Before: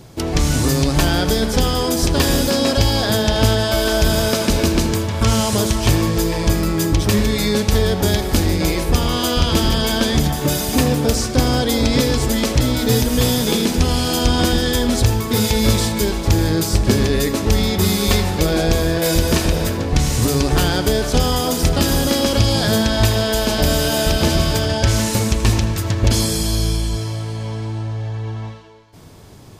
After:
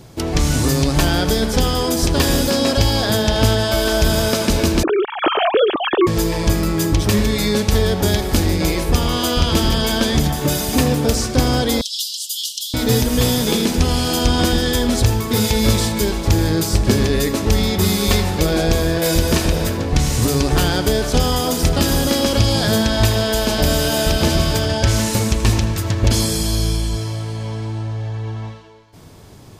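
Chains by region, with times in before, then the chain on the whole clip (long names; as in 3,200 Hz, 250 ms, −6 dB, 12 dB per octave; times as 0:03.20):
0:04.83–0:06.07: three sine waves on the formant tracks + notch filter 2,000 Hz, Q 7.5
0:11.81–0:12.74: Chebyshev high-pass filter 2,900 Hz, order 8 + comb filter 4.5 ms, depth 67%
whole clip: no processing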